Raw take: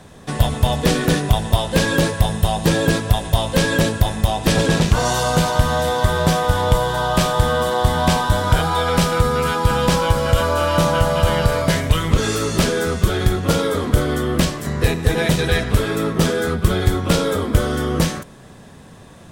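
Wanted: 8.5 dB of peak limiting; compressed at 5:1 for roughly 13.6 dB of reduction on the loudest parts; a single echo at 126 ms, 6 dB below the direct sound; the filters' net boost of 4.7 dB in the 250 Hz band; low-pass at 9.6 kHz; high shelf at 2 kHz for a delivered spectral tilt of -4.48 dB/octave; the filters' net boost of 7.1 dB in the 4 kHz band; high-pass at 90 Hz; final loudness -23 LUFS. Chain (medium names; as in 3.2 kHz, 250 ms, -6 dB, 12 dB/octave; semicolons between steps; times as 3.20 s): high-pass 90 Hz; low-pass 9.6 kHz; peaking EQ 250 Hz +7 dB; treble shelf 2 kHz +3 dB; peaking EQ 4 kHz +6 dB; compression 5:1, threshold -26 dBFS; peak limiter -20.5 dBFS; delay 126 ms -6 dB; trim +6 dB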